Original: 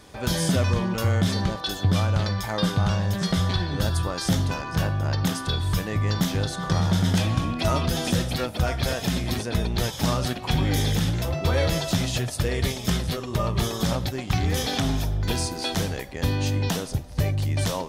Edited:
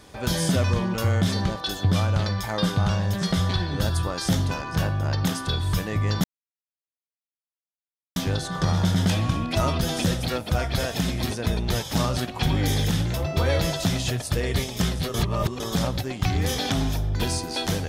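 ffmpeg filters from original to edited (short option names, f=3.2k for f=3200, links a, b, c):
-filter_complex "[0:a]asplit=4[a][b][c][d];[a]atrim=end=6.24,asetpts=PTS-STARTPTS,afade=t=out:st=6.236:d=0.004:c=hsin,apad=pad_dur=1.92[e];[b]atrim=start=6.24:end=13.222,asetpts=PTS-STARTPTS,afade=t=in:d=0.004:c=hsin[f];[c]atrim=start=13.218:end=13.682,asetpts=PTS-STARTPTS,areverse[g];[d]atrim=start=13.678[h];[e][f]concat=n=2:v=0:a=1[i];[i][g]acrossfade=d=0.004:c1=hsin:c2=hsin[j];[j][h]acrossfade=d=0.004:c1=hsin:c2=hsin"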